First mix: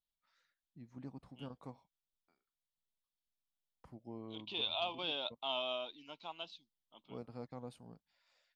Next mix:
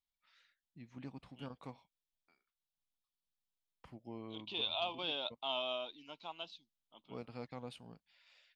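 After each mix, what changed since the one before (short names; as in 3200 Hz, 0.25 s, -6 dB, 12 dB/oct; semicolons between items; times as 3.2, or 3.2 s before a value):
first voice: add bell 2800 Hz +13 dB 1.4 oct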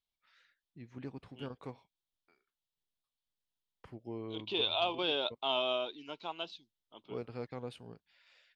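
second voice +4.0 dB; master: add fifteen-band EQ 100 Hz +8 dB, 400 Hz +10 dB, 1600 Hz +5 dB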